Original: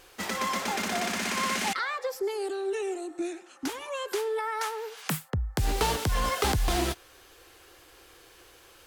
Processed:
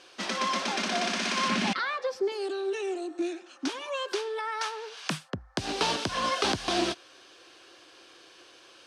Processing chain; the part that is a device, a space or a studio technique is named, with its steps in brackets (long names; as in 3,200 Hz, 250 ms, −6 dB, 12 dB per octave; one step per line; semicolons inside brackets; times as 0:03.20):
0:01.48–0:02.32: bass and treble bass +14 dB, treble −5 dB
full-range speaker at full volume (highs frequency-modulated by the lows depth 0.23 ms; loudspeaker in its box 250–7,600 Hz, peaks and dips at 450 Hz −8 dB, 840 Hz −7 dB, 1,300 Hz −4 dB, 2,000 Hz −7 dB, 7,300 Hz −9 dB)
level +4.5 dB